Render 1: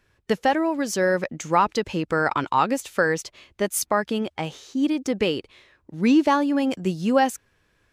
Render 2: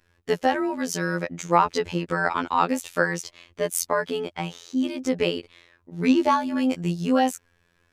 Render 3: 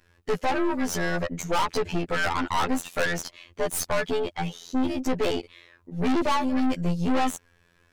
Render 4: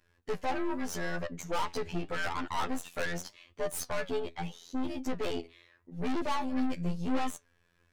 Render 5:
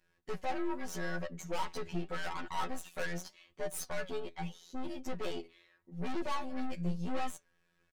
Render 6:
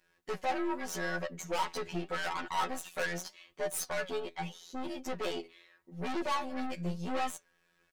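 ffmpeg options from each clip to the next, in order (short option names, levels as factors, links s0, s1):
-af "afftfilt=real='hypot(re,im)*cos(PI*b)':imag='0':win_size=2048:overlap=0.75,volume=1.33"
-af "aeval=exprs='(tanh(28.2*val(0)+0.7)-tanh(0.7))/28.2':c=same,volume=2.37"
-af "flanger=delay=6.6:depth=5.5:regen=75:speed=0.82:shape=sinusoidal,volume=0.631"
-af "aecho=1:1:5.4:0.59,volume=0.531"
-af "lowshelf=f=190:g=-11,volume=1.78"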